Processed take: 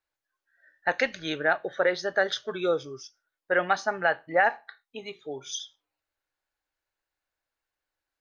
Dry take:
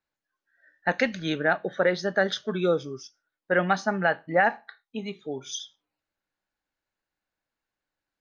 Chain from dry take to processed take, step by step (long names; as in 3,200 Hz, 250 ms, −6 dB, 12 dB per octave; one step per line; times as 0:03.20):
parametric band 200 Hz −14.5 dB 0.85 octaves